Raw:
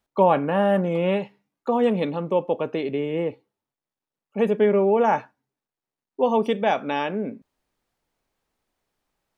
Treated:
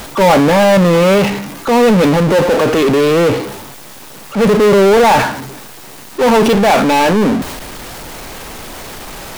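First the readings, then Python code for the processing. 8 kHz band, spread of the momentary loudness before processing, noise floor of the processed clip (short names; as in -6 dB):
n/a, 9 LU, -34 dBFS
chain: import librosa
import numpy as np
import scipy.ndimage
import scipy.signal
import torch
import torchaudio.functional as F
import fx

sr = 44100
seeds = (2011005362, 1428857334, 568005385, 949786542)

y = fx.power_curve(x, sr, exponent=0.35)
y = fx.transient(y, sr, attack_db=-4, sustain_db=4)
y = y * 10.0 ** (3.5 / 20.0)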